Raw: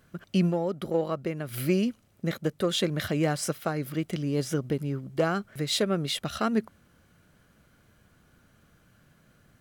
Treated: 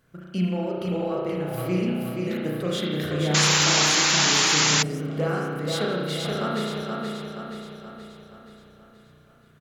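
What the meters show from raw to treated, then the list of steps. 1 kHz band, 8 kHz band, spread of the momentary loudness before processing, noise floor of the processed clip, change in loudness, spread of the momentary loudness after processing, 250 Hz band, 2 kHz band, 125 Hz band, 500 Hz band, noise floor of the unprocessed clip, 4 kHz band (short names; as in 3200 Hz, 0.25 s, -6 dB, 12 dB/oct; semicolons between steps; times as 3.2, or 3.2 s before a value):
+7.0 dB, +15.5 dB, 5 LU, -55 dBFS, +6.0 dB, 17 LU, +1.5 dB, +11.5 dB, +3.0 dB, +2.0 dB, -63 dBFS, +11.5 dB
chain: feedback echo 0.476 s, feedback 52%, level -4 dB; spring tank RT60 1.5 s, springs 33 ms, chirp 50 ms, DRR -3.5 dB; painted sound noise, 3.34–4.83, 760–7400 Hz -16 dBFS; gain -4.5 dB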